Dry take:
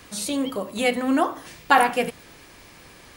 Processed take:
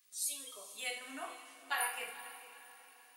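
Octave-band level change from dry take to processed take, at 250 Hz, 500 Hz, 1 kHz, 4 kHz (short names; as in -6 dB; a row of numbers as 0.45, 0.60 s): -32.0, -25.0, -21.0, -12.0 dB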